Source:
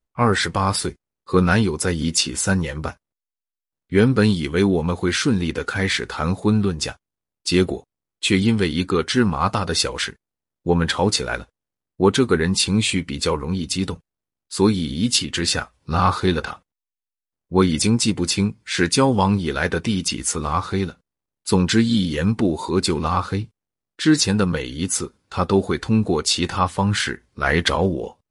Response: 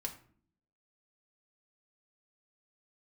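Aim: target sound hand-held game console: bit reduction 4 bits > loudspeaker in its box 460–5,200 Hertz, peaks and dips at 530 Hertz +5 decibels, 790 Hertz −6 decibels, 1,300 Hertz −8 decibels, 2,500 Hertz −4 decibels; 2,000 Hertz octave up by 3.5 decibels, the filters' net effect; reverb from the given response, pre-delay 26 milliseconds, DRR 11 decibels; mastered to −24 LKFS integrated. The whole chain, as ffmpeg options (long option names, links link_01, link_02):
-filter_complex "[0:a]equalizer=frequency=2000:width_type=o:gain=8,asplit=2[link_01][link_02];[1:a]atrim=start_sample=2205,adelay=26[link_03];[link_02][link_03]afir=irnorm=-1:irlink=0,volume=-10dB[link_04];[link_01][link_04]amix=inputs=2:normalize=0,acrusher=bits=3:mix=0:aa=0.000001,highpass=460,equalizer=frequency=530:width_type=q:width=4:gain=5,equalizer=frequency=790:width_type=q:width=4:gain=-6,equalizer=frequency=1300:width_type=q:width=4:gain=-8,equalizer=frequency=2500:width_type=q:width=4:gain=-4,lowpass=frequency=5200:width=0.5412,lowpass=frequency=5200:width=1.3066,volume=-1.5dB"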